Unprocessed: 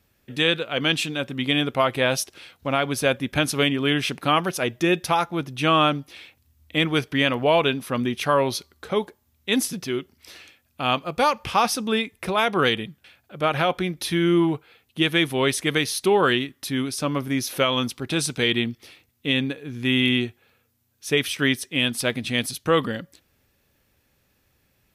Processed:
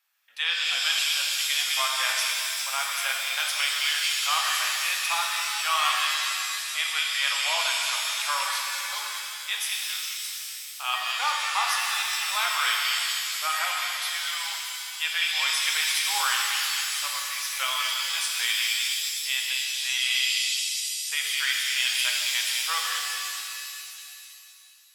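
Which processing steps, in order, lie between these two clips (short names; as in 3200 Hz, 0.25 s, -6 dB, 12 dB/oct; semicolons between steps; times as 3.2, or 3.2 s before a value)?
inverse Chebyshev high-pass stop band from 360 Hz, stop band 50 dB; delay with a stepping band-pass 0.206 s, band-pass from 2900 Hz, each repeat 0.7 oct, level -2 dB; shimmer reverb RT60 2.5 s, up +7 st, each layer -2 dB, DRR -0.5 dB; gain -5.5 dB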